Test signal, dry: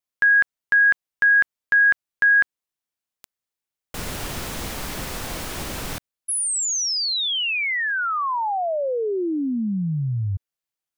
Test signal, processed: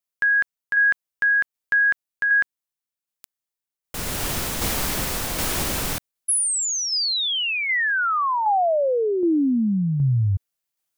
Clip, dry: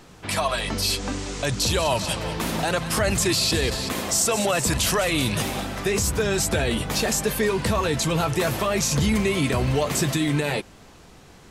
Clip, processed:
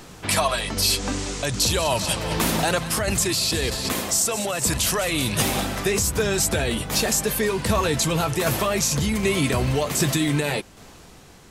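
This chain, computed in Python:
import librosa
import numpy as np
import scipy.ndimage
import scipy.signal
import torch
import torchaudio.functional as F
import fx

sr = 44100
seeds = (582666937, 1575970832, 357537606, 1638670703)

y = fx.high_shelf(x, sr, hz=6400.0, db=6.0)
y = fx.tremolo_shape(y, sr, shape='saw_down', hz=1.3, depth_pct=40)
y = fx.rider(y, sr, range_db=4, speed_s=0.5)
y = y * 10.0 ** (1.5 / 20.0)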